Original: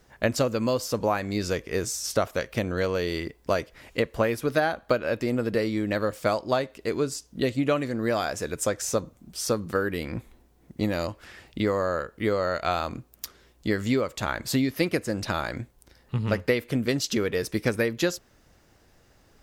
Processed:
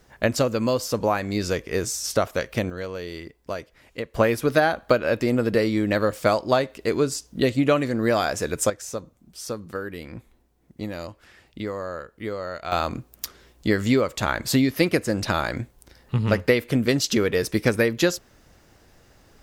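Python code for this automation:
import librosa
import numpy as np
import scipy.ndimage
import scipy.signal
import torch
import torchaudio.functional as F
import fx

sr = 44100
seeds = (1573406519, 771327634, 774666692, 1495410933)

y = fx.gain(x, sr, db=fx.steps((0.0, 2.5), (2.7, -6.0), (4.15, 4.5), (8.7, -5.5), (12.72, 4.5)))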